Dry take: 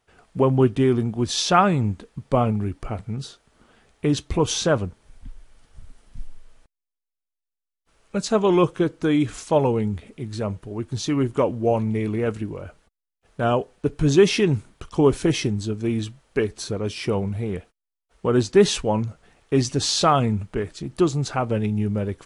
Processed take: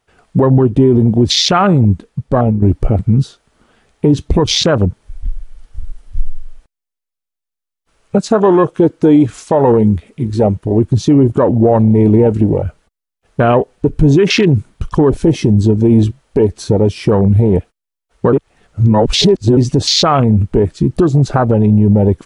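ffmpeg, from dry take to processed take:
-filter_complex "[0:a]asettb=1/sr,asplit=3[s0][s1][s2];[s0]atrim=end=8.184[s3];[s1]atrim=start=8.18:end=10.66,asetpts=PTS-STARTPTS,afade=t=in:d=0.004:c=qsin,afade=t=out:st=2.476:d=0.004:c=qsin,lowshelf=f=230:g=-7.5[s4];[s2]atrim=start=10.656[s5];[s3][s4]acrossfade=d=0.004:c1=hsin:c2=qsin[s6];[s6][s5]acrossfade=d=0.004:c1=qsin:c2=hsin,asplit=4[s7][s8][s9][s10];[s7]atrim=end=2.62,asetpts=PTS-STARTPTS,afade=t=out:st=1.74:d=0.88:silence=0.223872[s11];[s8]atrim=start=2.62:end=18.332,asetpts=PTS-STARTPTS,afade=t=in:d=0.004:c=hsin:silence=0.223872[s12];[s9]atrim=start=18.328:end=19.572,asetpts=PTS-STARTPTS,areverse[s13];[s10]atrim=start=19.568[s14];[s11][s12]concat=n=2:v=0:a=1[s15];[s15][s13]acrossfade=d=0.004:c1=hsin:c2=hsin[s16];[s16][s14]acrossfade=d=0.004:c1=hsin:c2=hsin,afwtdn=0.0447,acompressor=threshold=0.0794:ratio=6,alimiter=level_in=11.2:limit=0.891:release=50:level=0:latency=1,volume=0.891"

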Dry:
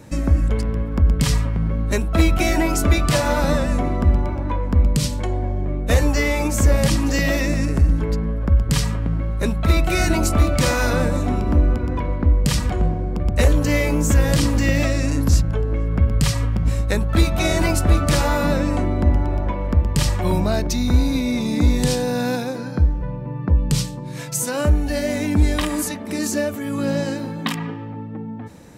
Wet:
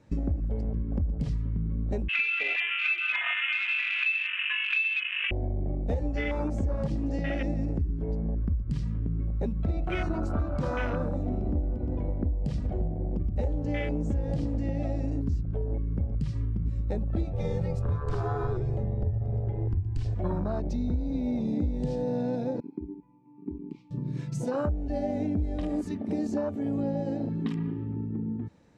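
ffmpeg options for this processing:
-filter_complex "[0:a]asettb=1/sr,asplit=3[s0][s1][s2];[s0]atrim=end=2.084[s3];[s1]atrim=start=2.08:end=5.31,asetpts=PTS-STARTPTS,afade=t=in:d=0.004:c=qsin,afade=t=out:st=3.226:d=0.004:c=qsin,lowpass=f=2300:t=q:w=0.5098,lowpass=f=2300:t=q:w=0.6013,lowpass=f=2300:t=q:w=0.9,lowpass=f=2300:t=q:w=2.563,afreqshift=-2700[s4];[s2]atrim=start=5.306[s5];[s3][s4]acrossfade=d=0.004:c1=hsin:c2=qsin[s6];[s6][s5]acrossfade=d=0.004:c1=qsin:c2=hsin,asplit=3[s7][s8][s9];[s7]afade=t=out:st=17.32:d=0.02[s10];[s8]afreqshift=-160,afade=t=in:st=17.32:d=0.02,afade=t=out:st=20.14:d=0.02[s11];[s9]afade=t=in:st=20.14:d=0.02[s12];[s10][s11][s12]amix=inputs=3:normalize=0,asettb=1/sr,asplit=3[s13][s14][s15];[s13]atrim=end=22.604[s16];[s14]atrim=start=22.6:end=23.91,asetpts=PTS-STARTPTS,afade=t=in:d=0.004:c=qsin,afade=t=out:st=1.306:d=0.004:c=qsin,asplit=3[s17][s18][s19];[s17]bandpass=f=300:t=q:w=8,volume=1[s20];[s18]bandpass=f=870:t=q:w=8,volume=0.501[s21];[s19]bandpass=f=2240:t=q:w=8,volume=0.355[s22];[s20][s21][s22]amix=inputs=3:normalize=0[s23];[s15]atrim=start=23.906[s24];[s16][s23]acrossfade=d=0.004:c1=hsin:c2=qsin[s25];[s25][s24]acrossfade=d=0.004:c1=qsin:c2=hsin,afwtdn=0.0891,lowpass=5300,acompressor=threshold=0.0501:ratio=6"

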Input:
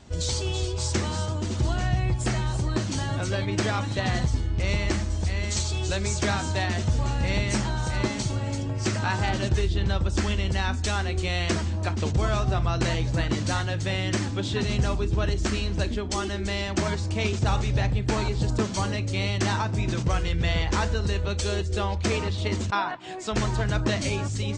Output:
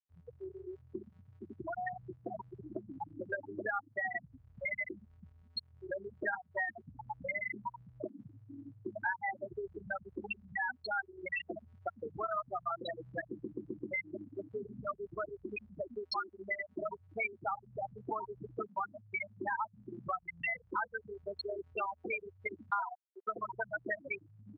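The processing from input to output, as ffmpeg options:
-filter_complex "[0:a]asettb=1/sr,asplit=3[s0][s1][s2];[s0]atrim=end=1.664[s3];[s1]atrim=start=1.66:end=3.69,asetpts=PTS-STARTPTS,afade=t=in:d=0.004:c=qsin,afade=t=out:st=2.026:d=0.004:c=qsin,aecho=1:1:432:0.562,atrim=end_sample=89523[s4];[s2]atrim=start=3.686[s5];[s3][s4]acrossfade=d=0.004:c1=hsin:c2=qsin[s6];[s6][s5]acrossfade=d=0.004:c1=qsin:c2=hsin,asplit=6[s7][s8][s9][s10][s11][s12];[s7]atrim=end=13.392[s13];[s8]atrim=start=13.258:end=13.392[s14];[s9]atrim=start=13.258:end=13.392[s15];[s10]atrim=start=13.258:end=13.392[s16];[s11]atrim=start=13.258:end=13.392[s17];[s12]atrim=start=13.908[s18];[s13][s14]acrossfade=d=0.004:c1=hsin:c2=hsin[s19];[s19][s15]acrossfade=d=0.004:c1=hsin:c2=hsin[s20];[s20][s16]acrossfade=d=0.004:c1=hsin:c2=hsin[s21];[s21][s17]acrossfade=d=0.004:c1=hsin:c2=hsin[s22];[s22][s18]acrossfade=d=0.004:c1=hsin:c2=hsin,afftfilt=real='re*gte(hypot(re,im),0.178)':imag='im*gte(hypot(re,im),0.178)':win_size=1024:overlap=0.75,highpass=1300,acompressor=threshold=0.00224:ratio=3,volume=5.96"

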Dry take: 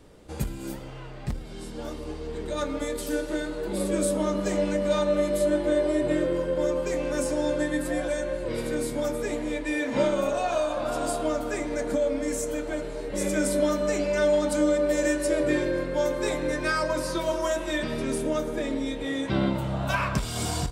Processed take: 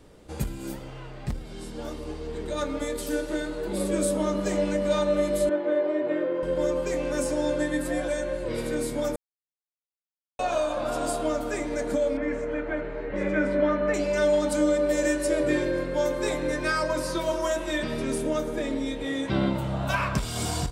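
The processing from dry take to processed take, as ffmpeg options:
-filter_complex "[0:a]asettb=1/sr,asplit=3[s0][s1][s2];[s0]atrim=end=5.494[s3];[s1]atrim=start=5.49:end=6.43,asetpts=PTS-STARTPTS,afade=t=in:d=0.004:c=qsin,afade=t=out:st=0.936:d=0.004:c=qsin,highpass=320,lowpass=2200[s4];[s2]atrim=start=6.426[s5];[s3][s4]acrossfade=d=0.004:c1=hsin:c2=qsin[s6];[s6][s5]acrossfade=d=0.004:c1=qsin:c2=hsin,asettb=1/sr,asplit=3[s7][s8][s9];[s7]atrim=end=12.174[s10];[s8]atrim=start=12.17:end=13.94,asetpts=PTS-STARTPTS,afade=t=in:d=0.004:c=qsin,afade=t=out:st=1.766:d=0.004:c=qsin,lowpass=f=1900:t=q:w=1.8[s11];[s9]atrim=start=13.936[s12];[s10][s11]acrossfade=d=0.004:c1=hsin:c2=qsin[s13];[s13][s12]acrossfade=d=0.004:c1=qsin:c2=hsin,asplit=3[s14][s15][s16];[s14]atrim=end=9.16,asetpts=PTS-STARTPTS,afade=t=out:st=9.156:d=0.004:c=hsin[s17];[s15]atrim=start=9.16:end=10.39,asetpts=PTS-STARTPTS,volume=0[s18];[s16]atrim=start=10.39,asetpts=PTS-STARTPTS,afade=t=in:d=0.004:c=hsin[s19];[s17][s18][s19]concat=n=3:v=0:a=1"

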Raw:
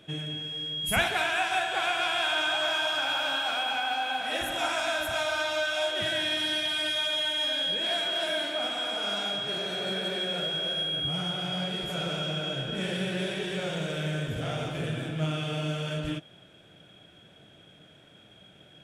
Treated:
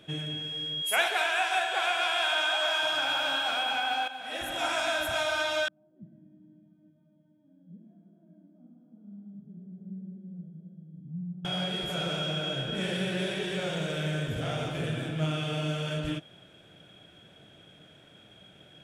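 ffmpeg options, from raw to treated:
-filter_complex "[0:a]asettb=1/sr,asplit=3[s0][s1][s2];[s0]atrim=end=0.824[s3];[s1]atrim=start=0.82:end=2.83,asetpts=PTS-STARTPTS,afade=t=in:d=0.004:c=qsin,afade=t=out:st=2.006:d=0.004:c=qsin,highpass=f=380:w=0.5412,highpass=f=380:w=1.3066[s4];[s2]atrim=start=2.826[s5];[s3][s4]acrossfade=d=0.004:c1=hsin:c2=qsin[s6];[s6][s5]acrossfade=d=0.004:c1=qsin:c2=hsin,asettb=1/sr,asplit=3[s7][s8][s9];[s7]atrim=end=5.684[s10];[s8]atrim=start=5.68:end=11.45,asetpts=PTS-STARTPTS,afade=t=in:d=0.004:c=qsin,afade=t=out:st=5.766:d=0.004:c=qsin,asuperpass=centerf=190:order=4:qfactor=2.8[s11];[s9]atrim=start=11.446[s12];[s10][s11]acrossfade=d=0.004:c1=hsin:c2=qsin[s13];[s13][s12]acrossfade=d=0.004:c1=qsin:c2=hsin,asplit=2[s14][s15];[s14]atrim=end=4.08,asetpts=PTS-STARTPTS,afade=t=out:st=4.076:d=0.004:c=hsin:silence=0.237137[s16];[s15]atrim=start=4.08,asetpts=PTS-STARTPTS,afade=t=in:d=0.67:silence=0.237137[s17];[s16][s17]concat=n=2:v=0:a=1"

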